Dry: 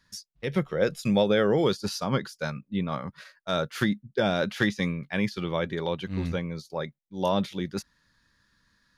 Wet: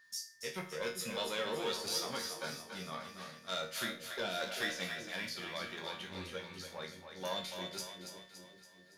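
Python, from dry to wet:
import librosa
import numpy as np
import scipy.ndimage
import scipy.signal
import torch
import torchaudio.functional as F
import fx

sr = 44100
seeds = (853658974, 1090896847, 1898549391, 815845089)

p1 = fx.diode_clip(x, sr, knee_db=-19.0)
p2 = fx.tilt_eq(p1, sr, slope=3.5)
p3 = p2 + 10.0 ** (-49.0 / 20.0) * np.sin(2.0 * np.pi * 1800.0 * np.arange(len(p2)) / sr)
p4 = fx.resonator_bank(p3, sr, root=39, chord='minor', decay_s=0.36)
p5 = p4 + fx.echo_split(p4, sr, split_hz=480.0, low_ms=392, high_ms=283, feedback_pct=52, wet_db=-7, dry=0)
y = p5 * librosa.db_to_amplitude(3.0)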